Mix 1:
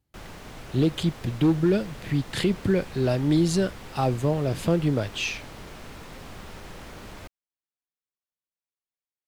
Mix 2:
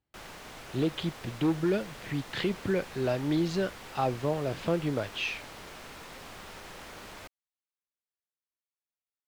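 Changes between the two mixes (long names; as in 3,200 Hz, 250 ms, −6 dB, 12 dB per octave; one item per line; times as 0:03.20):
speech: add high-frequency loss of the air 190 metres
master: add low-shelf EQ 320 Hz −11 dB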